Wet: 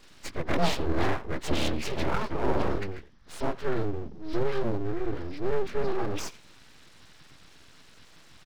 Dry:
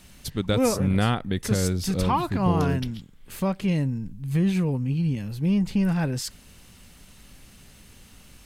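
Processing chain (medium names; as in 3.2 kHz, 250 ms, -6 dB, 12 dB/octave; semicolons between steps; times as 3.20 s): frequency axis rescaled in octaves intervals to 76%; speakerphone echo 90 ms, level -18 dB; full-wave rectifier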